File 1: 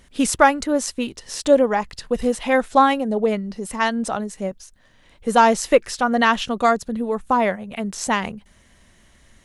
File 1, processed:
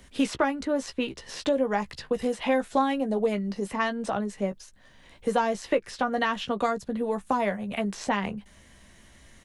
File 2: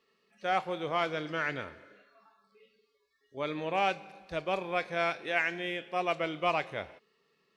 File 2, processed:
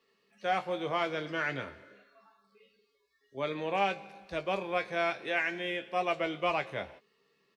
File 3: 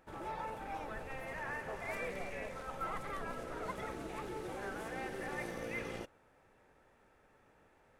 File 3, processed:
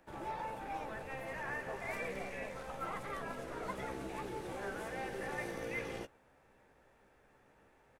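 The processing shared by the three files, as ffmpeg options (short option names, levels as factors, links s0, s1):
-filter_complex "[0:a]acrossover=split=83|310|4100[s0][s1][s2][s3];[s0]acompressor=threshold=0.002:ratio=4[s4];[s1]acompressor=threshold=0.0224:ratio=4[s5];[s2]acompressor=threshold=0.0562:ratio=4[s6];[s3]acompressor=threshold=0.00282:ratio=4[s7];[s4][s5][s6][s7]amix=inputs=4:normalize=0,bandreject=f=1300:w=22,asplit=2[s8][s9];[s9]adelay=15,volume=0.376[s10];[s8][s10]amix=inputs=2:normalize=0"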